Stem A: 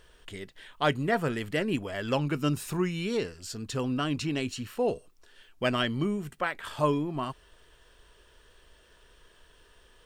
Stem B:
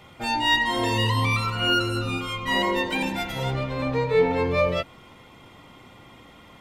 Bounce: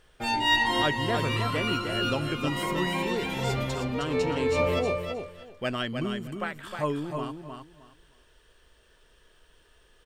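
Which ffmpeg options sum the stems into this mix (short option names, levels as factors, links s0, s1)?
-filter_complex "[0:a]bandreject=f=1000:w=22,volume=0.708,asplit=3[s0][s1][s2];[s1]volume=0.501[s3];[1:a]agate=range=0.126:threshold=0.00631:ratio=16:detection=peak,volume=0.794,asplit=2[s4][s5];[s5]volume=0.447[s6];[s2]apad=whole_len=291424[s7];[s4][s7]sidechaincompress=threshold=0.0158:ratio=8:attack=16:release=359[s8];[s3][s6]amix=inputs=2:normalize=0,aecho=0:1:311|622|933:1|0.21|0.0441[s9];[s0][s8][s9]amix=inputs=3:normalize=0"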